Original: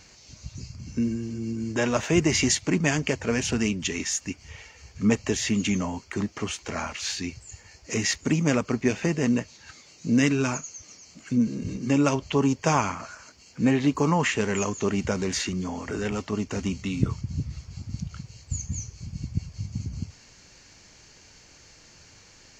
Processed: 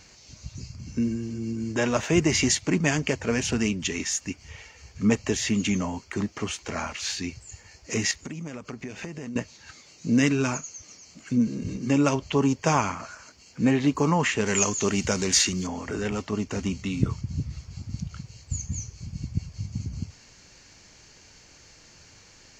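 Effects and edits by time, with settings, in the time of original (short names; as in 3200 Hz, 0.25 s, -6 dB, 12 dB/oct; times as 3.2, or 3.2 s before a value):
8.11–9.36 compressor 10:1, threshold -32 dBFS
14.46–15.67 high shelf 3100 Hz +12 dB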